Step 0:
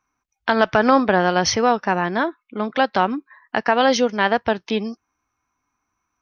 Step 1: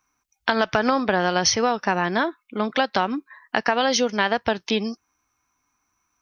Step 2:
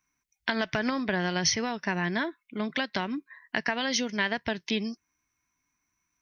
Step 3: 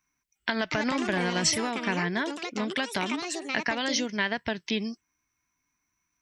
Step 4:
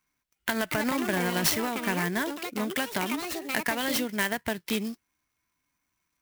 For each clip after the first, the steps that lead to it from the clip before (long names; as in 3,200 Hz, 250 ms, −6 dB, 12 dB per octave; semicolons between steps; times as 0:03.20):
high-shelf EQ 3,500 Hz +10 dB; downward compressor, threshold −16 dBFS, peak gain reduction 8 dB
thirty-one-band graphic EQ 160 Hz +7 dB, 500 Hz −8 dB, 800 Hz −9 dB, 1,250 Hz −9 dB, 2,000 Hz +6 dB; level −5.5 dB
delay with pitch and tempo change per echo 355 ms, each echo +5 semitones, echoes 2, each echo −6 dB
converter with an unsteady clock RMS 0.035 ms